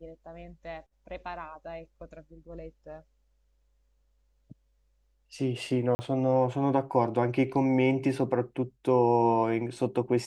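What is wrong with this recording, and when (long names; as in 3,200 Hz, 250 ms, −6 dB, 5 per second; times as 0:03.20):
0:05.95–0:05.99: drop-out 40 ms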